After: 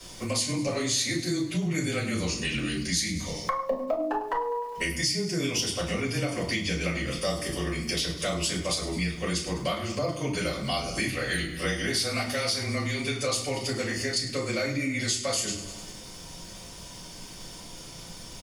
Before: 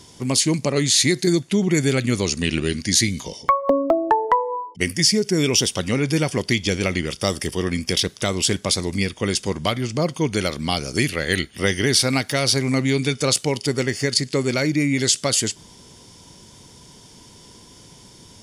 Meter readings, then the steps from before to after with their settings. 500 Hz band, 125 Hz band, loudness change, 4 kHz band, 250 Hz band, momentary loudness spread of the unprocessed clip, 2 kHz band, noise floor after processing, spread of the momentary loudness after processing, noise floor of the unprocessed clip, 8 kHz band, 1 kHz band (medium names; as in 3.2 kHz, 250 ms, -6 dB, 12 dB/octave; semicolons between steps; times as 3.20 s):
-8.0 dB, -8.5 dB, -8.0 dB, -7.5 dB, -9.0 dB, 6 LU, -5.5 dB, -43 dBFS, 15 LU, -47 dBFS, -8.5 dB, -9.0 dB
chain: bass shelf 480 Hz -8 dB; crackle 450 per s -43 dBFS; frequency shift -20 Hz; feedback delay 101 ms, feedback 55%, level -15.5 dB; simulated room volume 160 m³, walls furnished, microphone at 5.7 m; compression 2.5:1, threshold -25 dBFS, peak gain reduction 14 dB; trim -6 dB